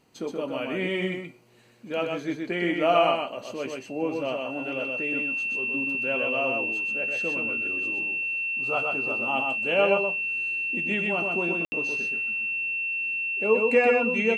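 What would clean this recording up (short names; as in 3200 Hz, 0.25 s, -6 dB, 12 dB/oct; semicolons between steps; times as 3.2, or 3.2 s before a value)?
notch 2700 Hz, Q 30; room tone fill 11.65–11.72; inverse comb 0.125 s -3.5 dB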